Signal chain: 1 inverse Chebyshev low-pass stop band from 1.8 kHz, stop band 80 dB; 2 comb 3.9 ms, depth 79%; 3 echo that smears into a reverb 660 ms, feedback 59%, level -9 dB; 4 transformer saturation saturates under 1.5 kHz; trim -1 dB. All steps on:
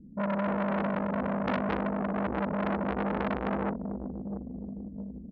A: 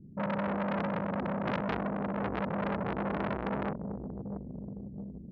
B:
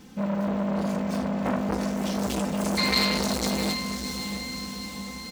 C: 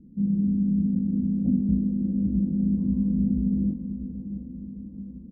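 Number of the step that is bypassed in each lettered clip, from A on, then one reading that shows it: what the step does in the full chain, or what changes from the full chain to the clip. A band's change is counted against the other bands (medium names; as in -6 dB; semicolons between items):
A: 2, 4 kHz band +2.0 dB; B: 1, 4 kHz band +19.5 dB; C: 4, crest factor change -6.0 dB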